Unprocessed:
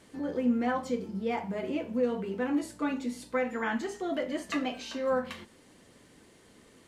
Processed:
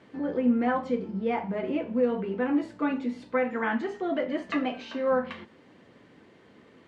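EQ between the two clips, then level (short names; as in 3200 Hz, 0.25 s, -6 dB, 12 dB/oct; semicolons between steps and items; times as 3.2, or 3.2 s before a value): BPF 100–2700 Hz; +3.5 dB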